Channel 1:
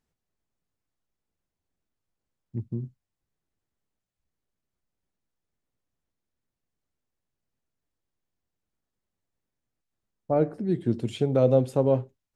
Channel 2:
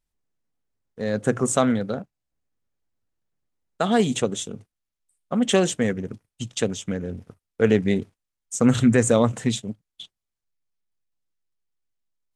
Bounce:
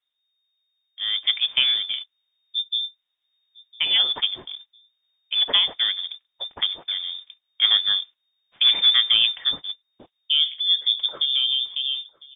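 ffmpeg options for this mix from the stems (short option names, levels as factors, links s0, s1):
-filter_complex "[0:a]alimiter=limit=0.158:level=0:latency=1:release=46,dynaudnorm=f=420:g=7:m=3.55,volume=0.562,asplit=2[s0][s1];[s1]volume=0.0668[s2];[1:a]acrusher=bits=5:mode=log:mix=0:aa=0.000001,volume=0.944[s3];[s2]aecho=0:1:1004|2008|3012|4016|5020|6024:1|0.45|0.202|0.0911|0.041|0.0185[s4];[s0][s3][s4]amix=inputs=3:normalize=0,lowpass=f=3100:t=q:w=0.5098,lowpass=f=3100:t=q:w=0.6013,lowpass=f=3100:t=q:w=0.9,lowpass=f=3100:t=q:w=2.563,afreqshift=-3700"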